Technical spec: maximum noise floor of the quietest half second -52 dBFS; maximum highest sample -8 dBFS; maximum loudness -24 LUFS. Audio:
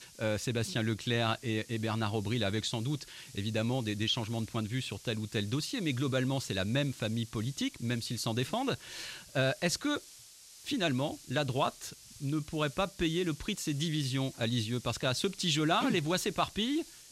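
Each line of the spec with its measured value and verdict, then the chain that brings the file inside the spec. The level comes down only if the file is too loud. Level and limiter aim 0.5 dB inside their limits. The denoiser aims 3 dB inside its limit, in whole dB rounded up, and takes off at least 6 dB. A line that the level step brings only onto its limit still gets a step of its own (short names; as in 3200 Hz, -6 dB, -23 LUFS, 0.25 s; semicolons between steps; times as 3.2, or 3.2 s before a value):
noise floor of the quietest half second -54 dBFS: OK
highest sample -16.0 dBFS: OK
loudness -33.0 LUFS: OK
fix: none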